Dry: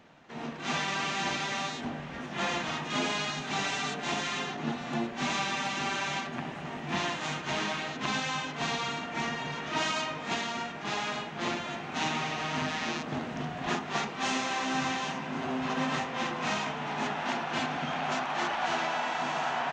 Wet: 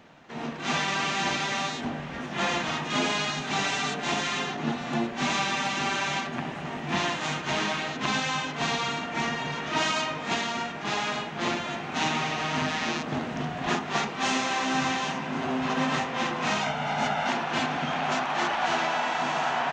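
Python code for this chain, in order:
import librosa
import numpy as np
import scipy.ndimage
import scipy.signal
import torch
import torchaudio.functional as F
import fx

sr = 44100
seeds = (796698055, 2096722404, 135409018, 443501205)

y = fx.comb(x, sr, ms=1.4, depth=0.61, at=(16.61, 17.29))
y = y * librosa.db_to_amplitude(4.0)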